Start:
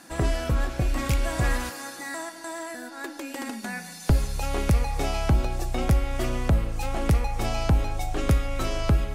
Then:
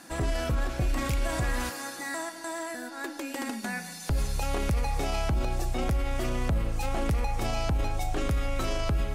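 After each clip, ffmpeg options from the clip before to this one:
-af "alimiter=limit=-20dB:level=0:latency=1:release=18"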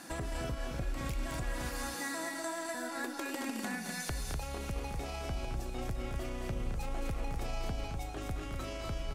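-filter_complex "[0:a]acompressor=threshold=-36dB:ratio=6,asplit=2[a][b];[b]aecho=0:1:215.7|247.8:0.447|0.562[c];[a][c]amix=inputs=2:normalize=0"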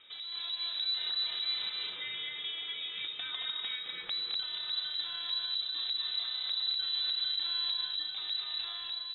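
-af "dynaudnorm=f=130:g=7:m=7dB,equalizer=f=1.4k:w=2.2:g=-8.5,lowpass=f=3.4k:t=q:w=0.5098,lowpass=f=3.4k:t=q:w=0.6013,lowpass=f=3.4k:t=q:w=0.9,lowpass=f=3.4k:t=q:w=2.563,afreqshift=-4000,volume=-5.5dB"

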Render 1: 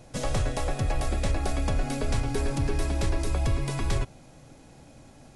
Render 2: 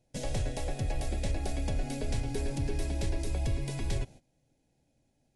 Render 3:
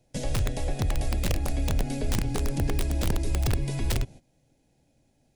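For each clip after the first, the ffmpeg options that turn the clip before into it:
-af "agate=range=-17dB:threshold=-42dB:ratio=16:detection=peak,equalizer=f=1.2k:w=2.7:g=-15,volume=-5dB"
-filter_complex "[0:a]aeval=exprs='(mod(14.1*val(0)+1,2)-1)/14.1':c=same,acrossover=split=350[a][b];[b]acompressor=threshold=-46dB:ratio=1.5[c];[a][c]amix=inputs=2:normalize=0,volume=6dB"

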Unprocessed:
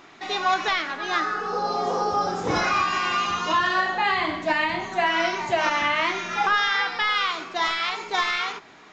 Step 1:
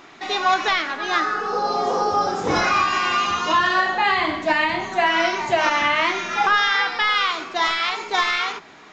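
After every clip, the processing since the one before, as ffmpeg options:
-af "bandreject=f=60:t=h:w=6,bandreject=f=120:t=h:w=6,bandreject=f=180:t=h:w=6,volume=3.5dB"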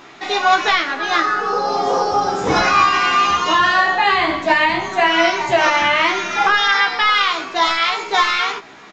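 -filter_complex "[0:a]asplit=2[a][b];[b]adelay=15,volume=-4dB[c];[a][c]amix=inputs=2:normalize=0,volume=3dB"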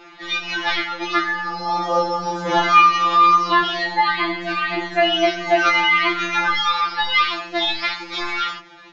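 -af "lowpass=f=5.8k:w=0.5412,lowpass=f=5.8k:w=1.3066,afftfilt=real='re*2.83*eq(mod(b,8),0)':imag='im*2.83*eq(mod(b,8),0)':win_size=2048:overlap=0.75,volume=-1dB"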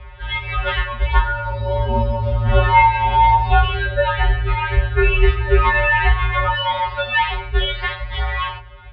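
-af "highpass=f=190:t=q:w=0.5412,highpass=f=190:t=q:w=1.307,lowpass=f=3.6k:t=q:w=0.5176,lowpass=f=3.6k:t=q:w=0.7071,lowpass=f=3.6k:t=q:w=1.932,afreqshift=-290,lowshelf=f=150:t=q:w=3:g=11"

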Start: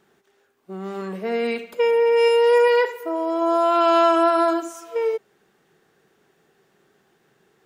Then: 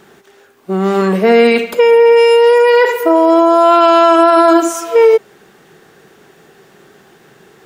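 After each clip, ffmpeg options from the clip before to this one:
-af "alimiter=level_in=18.5dB:limit=-1dB:release=50:level=0:latency=1,volume=-1dB"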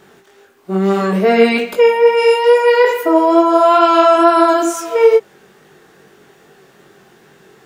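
-af "flanger=delay=20:depth=2.6:speed=2.3,volume=1dB"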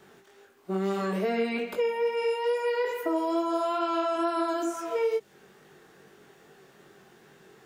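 -filter_complex "[0:a]acrossover=split=270|2600[a][b][c];[a]acompressor=threshold=-26dB:ratio=4[d];[b]acompressor=threshold=-20dB:ratio=4[e];[c]acompressor=threshold=-37dB:ratio=4[f];[d][e][f]amix=inputs=3:normalize=0,volume=-8.5dB"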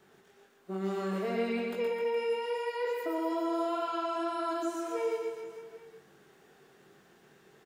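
-af "aecho=1:1:120|258|416.7|599.2|809.1:0.631|0.398|0.251|0.158|0.1,volume=-7dB"

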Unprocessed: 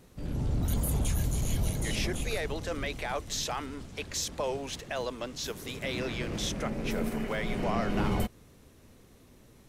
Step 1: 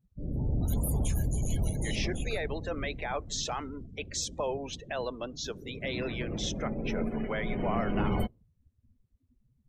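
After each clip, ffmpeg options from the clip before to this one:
-af "afftdn=nr=34:nf=-41"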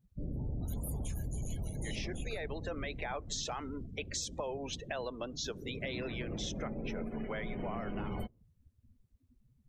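-af "acompressor=threshold=-36dB:ratio=6,volume=1dB"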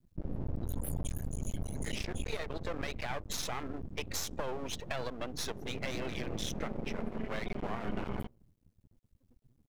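-af "aeval=exprs='max(val(0),0)':c=same,volume=5dB"

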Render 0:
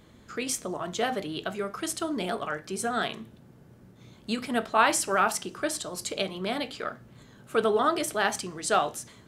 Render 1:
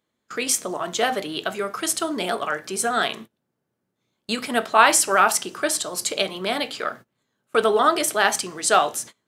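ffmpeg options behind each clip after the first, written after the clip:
-af "highpass=f=400:p=1,agate=range=-26dB:threshold=-45dB:ratio=16:detection=peak,highshelf=f=7.9k:g=4,volume=7.5dB"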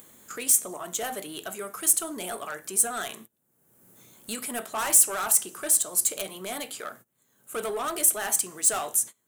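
-af "acompressor=mode=upward:threshold=-28dB:ratio=2.5,asoftclip=type=tanh:threshold=-17dB,aexciter=amount=7.7:drive=3.2:freq=6.9k,volume=-8.5dB"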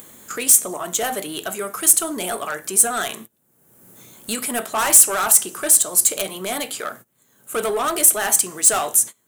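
-af "acontrast=83,volume=1.5dB"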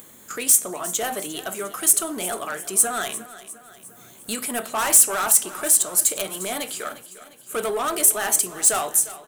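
-af "aecho=1:1:353|706|1059|1412|1765:0.158|0.0824|0.0429|0.0223|0.0116,volume=-3dB"

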